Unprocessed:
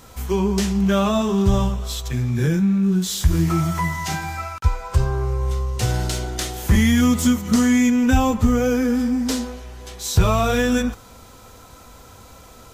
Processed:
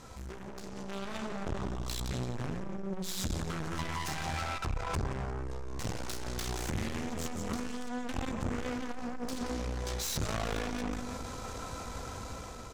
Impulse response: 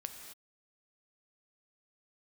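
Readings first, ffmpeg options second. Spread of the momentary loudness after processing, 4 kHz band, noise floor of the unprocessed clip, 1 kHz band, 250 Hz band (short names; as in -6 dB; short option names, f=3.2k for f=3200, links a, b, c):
7 LU, -11.5 dB, -45 dBFS, -12.5 dB, -20.0 dB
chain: -filter_complex "[0:a]acompressor=threshold=-23dB:ratio=16,equalizer=f=3.2k:t=o:w=0.77:g=-3.5,aeval=exprs='0.211*(cos(1*acos(clip(val(0)/0.211,-1,1)))-cos(1*PI/2))+0.0422*(cos(6*acos(clip(val(0)/0.211,-1,1)))-cos(6*PI/2))':c=same,lowpass=7.8k,bandreject=f=50:t=h:w=6,bandreject=f=100:t=h:w=6,aecho=1:1:175|350|525:0.119|0.0416|0.0146,asplit=2[a][b];[1:a]atrim=start_sample=2205,lowshelf=f=130:g=6[c];[b][c]afir=irnorm=-1:irlink=0,volume=-12dB[d];[a][d]amix=inputs=2:normalize=0,aeval=exprs='(tanh(56.2*val(0)+0.6)-tanh(0.6))/56.2':c=same,dynaudnorm=f=110:g=17:m=9dB,volume=-2dB"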